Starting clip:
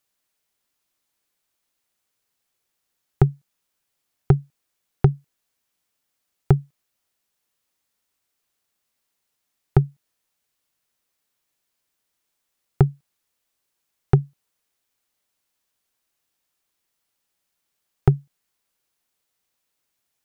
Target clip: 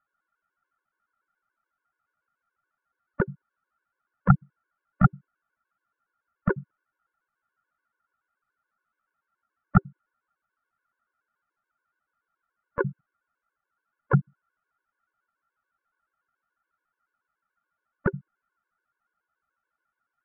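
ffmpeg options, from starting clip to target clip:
ffmpeg -i in.wav -filter_complex "[0:a]asplit=2[link_01][link_02];[link_02]asetrate=58866,aresample=44100,atempo=0.749154,volume=-4dB[link_03];[link_01][link_03]amix=inputs=2:normalize=0,lowpass=frequency=1400:width_type=q:width=14,afftfilt=real='re*gt(sin(2*PI*7*pts/sr)*(1-2*mod(floor(b*sr/1024/290),2)),0)':imag='im*gt(sin(2*PI*7*pts/sr)*(1-2*mod(floor(b*sr/1024/290),2)),0)':win_size=1024:overlap=0.75,volume=-3dB" out.wav

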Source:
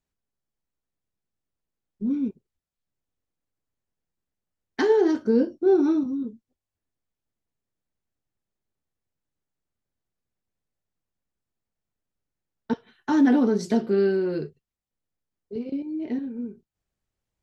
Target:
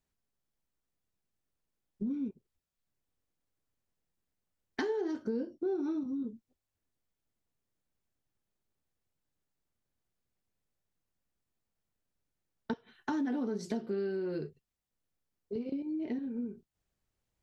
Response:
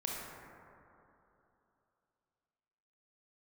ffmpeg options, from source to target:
-af "acompressor=threshold=-34dB:ratio=4"

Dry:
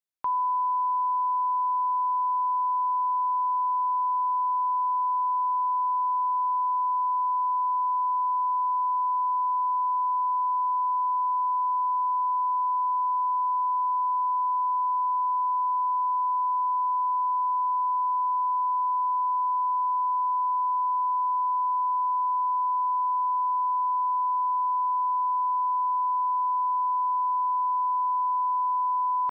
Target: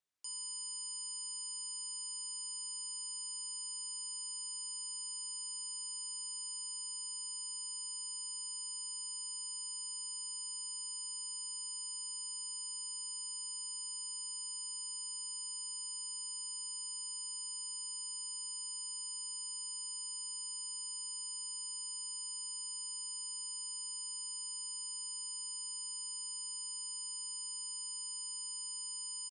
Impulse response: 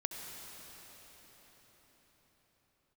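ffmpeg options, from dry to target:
-af "aeval=exprs='0.0119*(abs(mod(val(0)/0.0119+3,4)-2)-1)':channel_layout=same,aresample=22050,aresample=44100,volume=1.5dB"

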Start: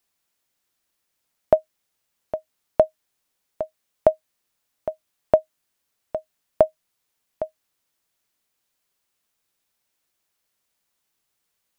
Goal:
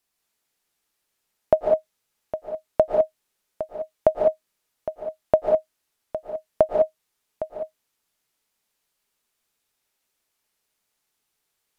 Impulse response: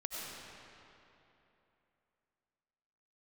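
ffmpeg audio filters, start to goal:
-filter_complex "[1:a]atrim=start_sample=2205,atrim=end_sample=6174,asetrate=29106,aresample=44100[link_01];[0:a][link_01]afir=irnorm=-1:irlink=0"

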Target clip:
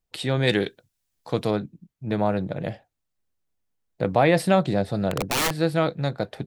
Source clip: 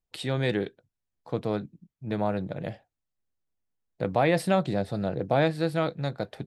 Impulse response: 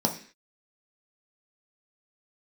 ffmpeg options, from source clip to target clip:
-filter_complex "[0:a]asettb=1/sr,asplit=3[link_01][link_02][link_03];[link_01]atrim=end=0.474[link_04];[link_02]atrim=start=0.47:end=1.51,asetpts=PTS-STARTPTS,afade=type=in:duration=0.004:curve=qsin,afade=type=out:start_time=1.036:duration=0.004:curve=qsin,highshelf=frequency=2300:gain=11[link_05];[link_03]atrim=start=1.506[link_06];[link_04][link_05]acrossfade=duration=0.004:curve1=hsin:curve2=qsin[link_07];[link_07][link_06]acrossfade=duration=0.004:curve1=qsin:curve2=hsin,asettb=1/sr,asplit=3[link_08][link_09][link_10];[link_08]atrim=end=5.114[link_11];[link_09]atrim=start=5.11:end=5.6,asetpts=PTS-STARTPTS,afade=type=in:duration=0.004:curve=qsin,afade=type=out:start_time=0.486:duration=0.004:curve=qsin,aeval=exprs='(mod(12.6*val(0)+1,2)-1)/12.6':channel_layout=same[link_12];[link_10]atrim=start=5.596[link_13];[link_11][link_12]acrossfade=duration=0.004:curve1=hsin:curve2=qsin[link_14];[link_14][link_13]acrossfade=duration=0.004:curve1=qsin:curve2=hsin,volume=4.5dB"

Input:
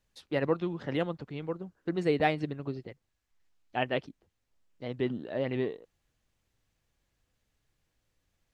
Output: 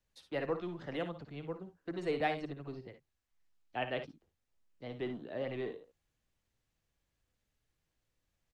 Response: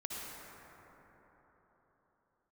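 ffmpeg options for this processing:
-filter_complex "[0:a]acrossover=split=310|470|1500[link_01][link_02][link_03][link_04];[link_01]asoftclip=type=hard:threshold=-39dB[link_05];[link_05][link_02][link_03][link_04]amix=inputs=4:normalize=0,aecho=1:1:56|69:0.299|0.211,volume=-6dB"

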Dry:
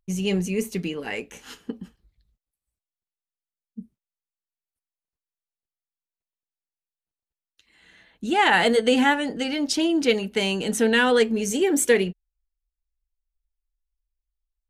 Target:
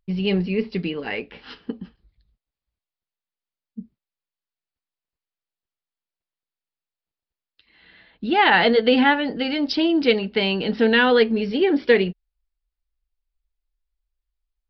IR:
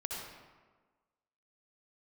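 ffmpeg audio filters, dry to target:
-af "aresample=11025,aresample=44100,volume=2.5dB"

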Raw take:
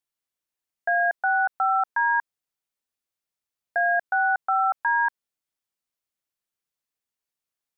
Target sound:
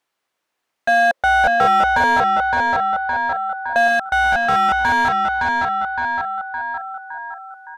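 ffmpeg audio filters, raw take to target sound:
ffmpeg -i in.wav -filter_complex "[0:a]aecho=1:1:564|1128|1692|2256|2820|3384:0.335|0.167|0.0837|0.0419|0.0209|0.0105,asplit=2[link_01][link_02];[link_02]highpass=frequency=720:poles=1,volume=24dB,asoftclip=type=tanh:threshold=-13.5dB[link_03];[link_01][link_03]amix=inputs=2:normalize=0,lowpass=frequency=1100:poles=1,volume=-6dB,asettb=1/sr,asplit=3[link_04][link_05][link_06];[link_04]atrim=end=0.884[link_07];[link_05]atrim=start=0.88:end=3.88,asetpts=PTS-STARTPTS,afade=type=in:duration=0.004:curve=qsin,afade=type=out:start_time=2.996:duration=0.004:curve=qsin,equalizer=frequency=530:width=3.1:gain=14[link_08];[link_06]atrim=start=3.876[link_09];[link_07][link_08]acrossfade=duration=0.004:curve1=hsin:curve2=qsin[link_10];[link_10][link_09]acrossfade=duration=0.004:curve1=qsin:curve2=hsin,volume=5.5dB" out.wav

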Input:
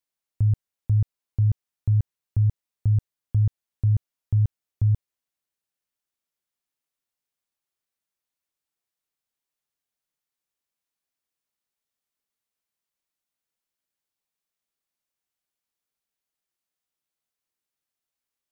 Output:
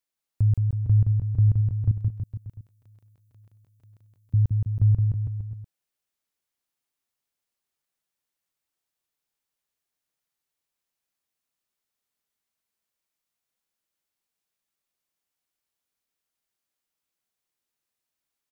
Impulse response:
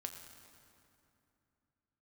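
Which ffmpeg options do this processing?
-filter_complex "[0:a]asettb=1/sr,asplit=3[link_01][link_02][link_03];[link_01]atrim=end=1.914[link_04];[link_02]atrim=start=1.91:end=4.34,asetpts=PTS-STARTPTS,afade=type=in:duration=0.004:curve=qsin,afade=type=out:start_time=2.426:duration=0.004:curve=qsin,aderivative[link_05];[link_03]atrim=start=4.336[link_06];[link_04][link_05]acrossfade=duration=0.004:curve1=hsin:curve2=qsin[link_07];[link_07][link_06]acrossfade=duration=0.004:curve1=qsin:curve2=hsin,aecho=1:1:170|323|460.7|584.6|696.2:0.631|0.398|0.251|0.158|0.1"

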